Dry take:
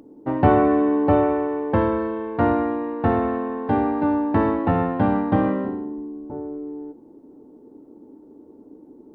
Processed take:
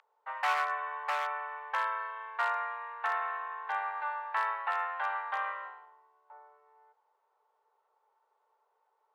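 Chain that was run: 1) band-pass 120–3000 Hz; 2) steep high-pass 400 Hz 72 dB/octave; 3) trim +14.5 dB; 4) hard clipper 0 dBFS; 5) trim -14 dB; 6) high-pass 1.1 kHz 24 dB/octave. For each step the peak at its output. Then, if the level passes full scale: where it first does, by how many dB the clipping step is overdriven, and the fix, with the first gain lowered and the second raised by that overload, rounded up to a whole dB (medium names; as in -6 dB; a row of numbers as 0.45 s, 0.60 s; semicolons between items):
-5.0 dBFS, -8.5 dBFS, +6.0 dBFS, 0.0 dBFS, -14.0 dBFS, -18.0 dBFS; step 3, 6.0 dB; step 3 +8.5 dB, step 5 -8 dB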